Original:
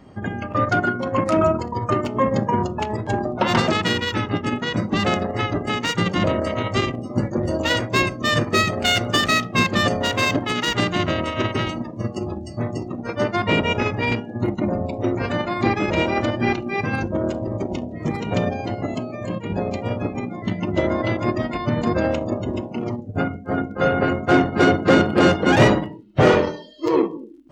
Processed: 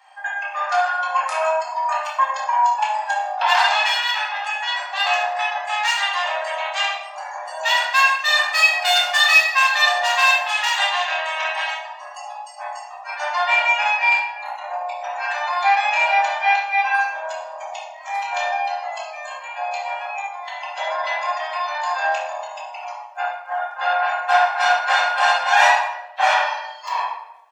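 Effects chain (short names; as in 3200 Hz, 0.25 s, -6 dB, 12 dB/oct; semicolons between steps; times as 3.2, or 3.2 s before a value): steep high-pass 740 Hz 48 dB/oct; comb 1.2 ms, depth 60%; shoebox room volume 310 m³, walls mixed, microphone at 2.1 m; gain -1.5 dB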